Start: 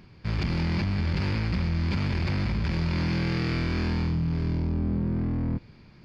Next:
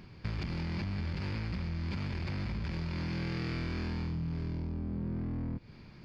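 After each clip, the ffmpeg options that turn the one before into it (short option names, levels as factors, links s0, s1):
-af "acompressor=threshold=0.0251:ratio=10"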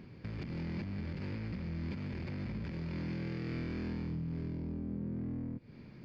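-af "equalizer=f=125:t=o:w=1:g=6,equalizer=f=250:t=o:w=1:g=9,equalizer=f=500:t=o:w=1:g=8,equalizer=f=2000:t=o:w=1:g=5,alimiter=limit=0.0668:level=0:latency=1:release=261,volume=0.422"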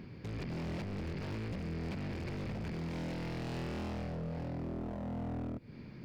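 -af "aeval=exprs='0.0141*(abs(mod(val(0)/0.0141+3,4)-2)-1)':c=same,volume=1.41"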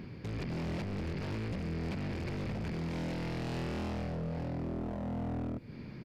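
-af "areverse,acompressor=mode=upward:threshold=0.00708:ratio=2.5,areverse,aresample=32000,aresample=44100,volume=1.33"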